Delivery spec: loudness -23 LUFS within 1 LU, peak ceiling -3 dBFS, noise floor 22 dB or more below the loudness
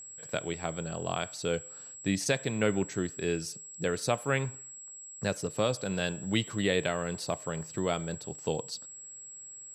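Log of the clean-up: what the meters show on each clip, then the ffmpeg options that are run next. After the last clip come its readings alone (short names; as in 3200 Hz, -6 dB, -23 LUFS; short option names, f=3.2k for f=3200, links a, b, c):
steady tone 7700 Hz; tone level -44 dBFS; loudness -32.5 LUFS; peak -14.0 dBFS; loudness target -23.0 LUFS
-> -af "bandreject=f=7.7k:w=30"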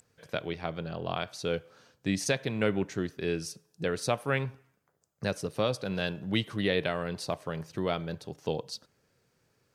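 steady tone none; loudness -32.5 LUFS; peak -14.0 dBFS; loudness target -23.0 LUFS
-> -af "volume=9.5dB"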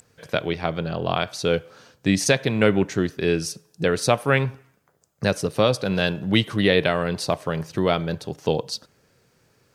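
loudness -23.0 LUFS; peak -4.5 dBFS; noise floor -64 dBFS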